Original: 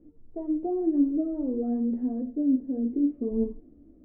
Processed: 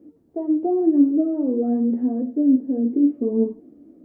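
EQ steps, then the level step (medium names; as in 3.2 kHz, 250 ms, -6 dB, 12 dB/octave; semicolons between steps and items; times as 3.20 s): high-pass 190 Hz 12 dB/octave; +8.0 dB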